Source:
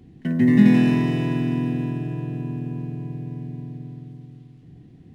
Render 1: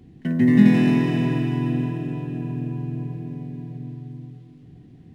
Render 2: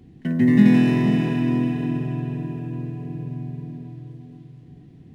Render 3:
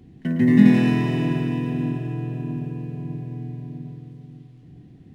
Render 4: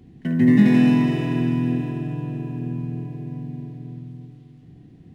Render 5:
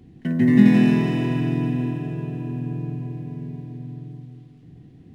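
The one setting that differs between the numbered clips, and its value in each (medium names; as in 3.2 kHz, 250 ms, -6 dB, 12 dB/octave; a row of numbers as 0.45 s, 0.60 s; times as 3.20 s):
tape echo, time: 298 ms, 473 ms, 109 ms, 71 ms, 161 ms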